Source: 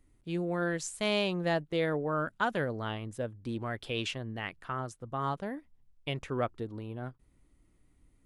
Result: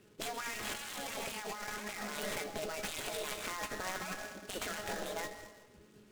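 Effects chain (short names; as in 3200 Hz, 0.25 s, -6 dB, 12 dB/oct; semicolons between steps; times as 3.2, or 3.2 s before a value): speed mistake 33 rpm record played at 45 rpm; bell 910 Hz -10 dB 0.65 oct; reverb RT60 1.2 s, pre-delay 75 ms, DRR 12.5 dB; spectral gate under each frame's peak -10 dB weak; careless resampling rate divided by 6×, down none, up hold; in parallel at +3 dB: limiter -35 dBFS, peak gain reduction 12 dB; on the sum: LPF 8600 Hz 12 dB/oct; resonator 210 Hz, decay 0.16 s, harmonics all, mix 80%; negative-ratio compressor -49 dBFS, ratio -1; noise-modulated delay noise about 4300 Hz, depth 0.048 ms; gain +9 dB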